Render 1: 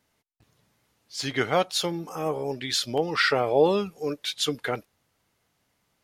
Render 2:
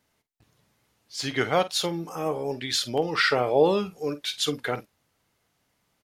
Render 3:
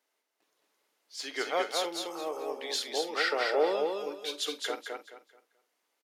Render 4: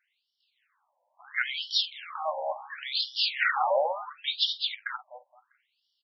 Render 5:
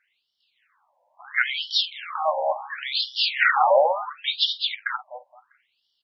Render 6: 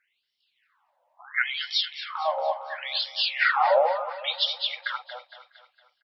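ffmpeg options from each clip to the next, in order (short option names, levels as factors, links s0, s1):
-filter_complex "[0:a]asplit=2[s0][s1];[s1]adelay=48,volume=0.2[s2];[s0][s2]amix=inputs=2:normalize=0"
-filter_complex "[0:a]highpass=f=340:w=0.5412,highpass=f=340:w=1.3066,asplit=2[s0][s1];[s1]aecho=0:1:216|432|648|864:0.668|0.18|0.0487|0.0132[s2];[s0][s2]amix=inputs=2:normalize=0,volume=0.447"
-af "aeval=exprs='0.178*(cos(1*acos(clip(val(0)/0.178,-1,1)))-cos(1*PI/2))+0.0398*(cos(2*acos(clip(val(0)/0.178,-1,1)))-cos(2*PI/2))':c=same,afftfilt=real='re*between(b*sr/1024,710*pow(4100/710,0.5+0.5*sin(2*PI*0.72*pts/sr))/1.41,710*pow(4100/710,0.5+0.5*sin(2*PI*0.72*pts/sr))*1.41)':imag='im*between(b*sr/1024,710*pow(4100/710,0.5+0.5*sin(2*PI*0.72*pts/sr))/1.41,710*pow(4100/710,0.5+0.5*sin(2*PI*0.72*pts/sr))*1.41)':win_size=1024:overlap=0.75,volume=2.82"
-af "lowpass=f=3100:p=1,volume=2.51"
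-af "aecho=1:1:230|460|690|920|1150:0.2|0.0998|0.0499|0.0249|0.0125,volume=0.708"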